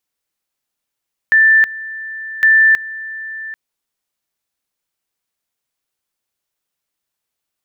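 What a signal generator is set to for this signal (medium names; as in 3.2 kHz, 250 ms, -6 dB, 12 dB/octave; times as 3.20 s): two-level tone 1.77 kHz -6.5 dBFS, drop 18 dB, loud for 0.32 s, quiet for 0.79 s, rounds 2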